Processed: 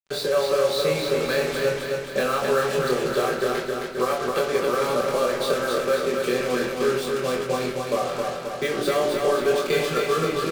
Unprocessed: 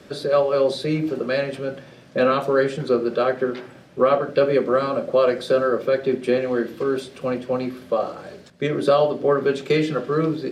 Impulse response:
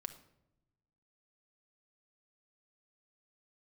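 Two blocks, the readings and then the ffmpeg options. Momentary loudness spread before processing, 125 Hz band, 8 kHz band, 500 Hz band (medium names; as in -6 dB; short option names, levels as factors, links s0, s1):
9 LU, -4.0 dB, no reading, -2.0 dB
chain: -filter_complex "[0:a]equalizer=f=210:t=o:w=2.2:g=-8.5,acompressor=threshold=0.0501:ratio=4,acrusher=bits=5:mix=0:aa=0.5,asplit=2[s0][s1];[s1]adelay=24,volume=0.708[s2];[s0][s2]amix=inputs=2:normalize=0,aecho=1:1:265|530|795|1060|1325|1590|1855|2120|2385:0.631|0.379|0.227|0.136|0.0818|0.0491|0.0294|0.0177|0.0106[s3];[1:a]atrim=start_sample=2205[s4];[s3][s4]afir=irnorm=-1:irlink=0,volume=2.11"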